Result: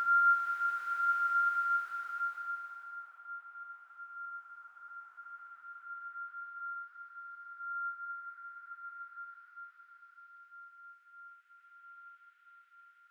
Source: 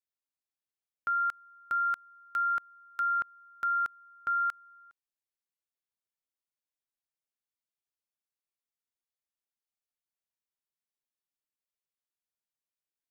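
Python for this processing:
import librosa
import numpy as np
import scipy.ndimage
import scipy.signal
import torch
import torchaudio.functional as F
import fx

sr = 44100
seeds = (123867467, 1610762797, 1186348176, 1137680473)

y = fx.echo_stepped(x, sr, ms=377, hz=940.0, octaves=0.7, feedback_pct=70, wet_db=-11)
y = fx.paulstretch(y, sr, seeds[0], factor=10.0, window_s=0.5, from_s=4.4)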